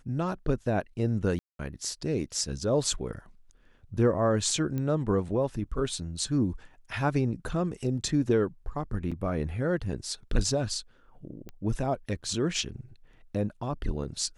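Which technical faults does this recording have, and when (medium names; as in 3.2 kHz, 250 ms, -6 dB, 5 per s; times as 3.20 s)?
1.39–1.59 s: dropout 202 ms
4.78 s: pop -21 dBFS
9.11–9.12 s: dropout 5.7 ms
11.49 s: pop -28 dBFS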